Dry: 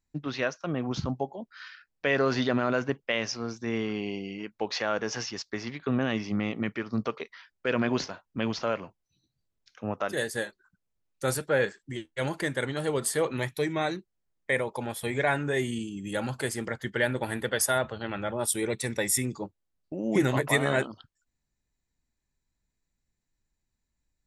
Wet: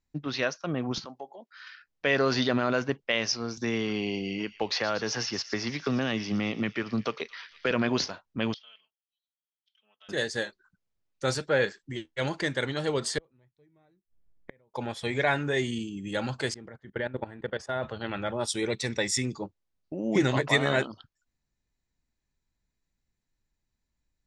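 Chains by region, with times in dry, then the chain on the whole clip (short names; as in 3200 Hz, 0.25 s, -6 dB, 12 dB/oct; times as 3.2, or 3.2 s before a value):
0.98–1.67 Bessel high-pass 500 Hz + compressor 1.5:1, threshold -47 dBFS
3.57–7.71 thin delay 0.115 s, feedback 63%, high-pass 3000 Hz, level -12 dB + three-band squash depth 70%
8.54–10.09 band-pass 3200 Hz, Q 20 + comb 4.6 ms, depth 96%
13.18–14.74 flipped gate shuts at -33 dBFS, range -39 dB + tilt -3 dB/oct
16.54–17.83 gate -39 dBFS, range -7 dB + LPF 1200 Hz 6 dB/oct + level quantiser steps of 15 dB
whole clip: LPF 6900 Hz 24 dB/oct; dynamic EQ 4800 Hz, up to +7 dB, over -49 dBFS, Q 1.1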